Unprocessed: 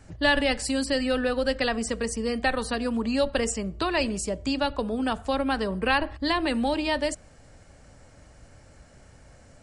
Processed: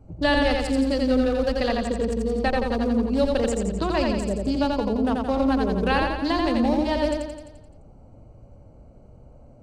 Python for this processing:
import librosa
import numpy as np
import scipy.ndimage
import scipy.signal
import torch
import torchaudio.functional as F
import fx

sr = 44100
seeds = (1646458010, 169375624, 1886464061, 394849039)

y = fx.wiener(x, sr, points=25)
y = fx.peak_eq(y, sr, hz=2100.0, db=-5.5, octaves=2.0)
y = fx.echo_feedback(y, sr, ms=86, feedback_pct=56, wet_db=-3.0)
y = fx.dynamic_eq(y, sr, hz=9800.0, q=0.93, threshold_db=-52.0, ratio=4.0, max_db=-6)
y = F.gain(torch.from_numpy(y), 3.0).numpy()